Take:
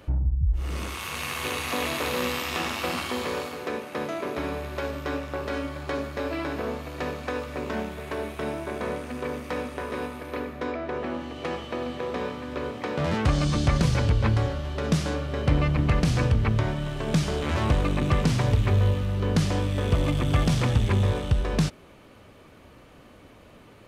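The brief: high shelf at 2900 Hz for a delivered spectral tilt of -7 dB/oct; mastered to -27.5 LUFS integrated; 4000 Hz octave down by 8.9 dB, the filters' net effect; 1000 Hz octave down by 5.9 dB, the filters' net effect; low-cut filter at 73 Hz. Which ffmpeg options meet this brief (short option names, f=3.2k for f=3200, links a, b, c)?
-af "highpass=73,equalizer=f=1k:t=o:g=-6.5,highshelf=f=2.9k:g=-6.5,equalizer=f=4k:t=o:g=-6.5,volume=1.5dB"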